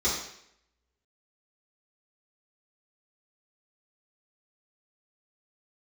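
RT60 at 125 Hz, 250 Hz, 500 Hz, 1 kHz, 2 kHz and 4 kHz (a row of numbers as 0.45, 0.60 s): 0.65, 0.70, 0.75, 0.70, 0.75, 0.70 s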